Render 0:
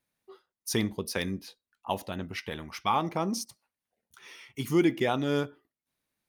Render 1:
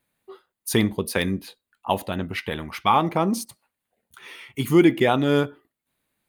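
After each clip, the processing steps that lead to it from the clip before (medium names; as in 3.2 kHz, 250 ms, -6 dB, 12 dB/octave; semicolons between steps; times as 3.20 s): peaking EQ 5.6 kHz -12 dB 0.4 oct; trim +8 dB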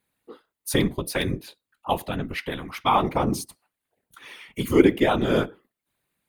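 whisper effect; trim -1.5 dB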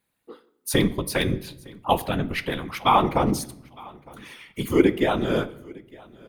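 gain riding 2 s; feedback delay 909 ms, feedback 25%, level -24 dB; on a send at -15.5 dB: reverberation RT60 0.85 s, pre-delay 6 ms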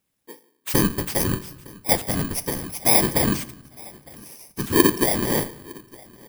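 bit-reversed sample order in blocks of 32 samples; trim +1 dB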